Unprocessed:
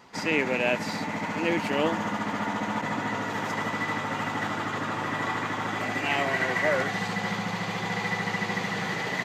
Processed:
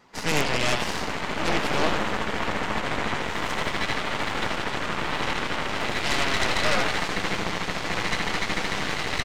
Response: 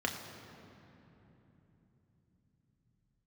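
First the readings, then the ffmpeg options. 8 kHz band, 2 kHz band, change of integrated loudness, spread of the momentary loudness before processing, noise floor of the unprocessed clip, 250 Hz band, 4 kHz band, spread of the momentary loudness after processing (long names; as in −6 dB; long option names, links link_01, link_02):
+7.5 dB, +1.5 dB, +2.0 dB, 5 LU, −33 dBFS, −1.5 dB, +7.5 dB, 5 LU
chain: -filter_complex "[0:a]asplit=8[link_01][link_02][link_03][link_04][link_05][link_06][link_07][link_08];[link_02]adelay=87,afreqshift=110,volume=-6.5dB[link_09];[link_03]adelay=174,afreqshift=220,volume=-11.5dB[link_10];[link_04]adelay=261,afreqshift=330,volume=-16.6dB[link_11];[link_05]adelay=348,afreqshift=440,volume=-21.6dB[link_12];[link_06]adelay=435,afreqshift=550,volume=-26.6dB[link_13];[link_07]adelay=522,afreqshift=660,volume=-31.7dB[link_14];[link_08]adelay=609,afreqshift=770,volume=-36.7dB[link_15];[link_01][link_09][link_10][link_11][link_12][link_13][link_14][link_15]amix=inputs=8:normalize=0,flanger=delay=0.5:depth=6.4:regen=-75:speed=1.3:shape=sinusoidal,aeval=exprs='0.211*(cos(1*acos(clip(val(0)/0.211,-1,1)))-cos(1*PI/2))+0.0841*(cos(8*acos(clip(val(0)/0.211,-1,1)))-cos(8*PI/2))':channel_layout=same"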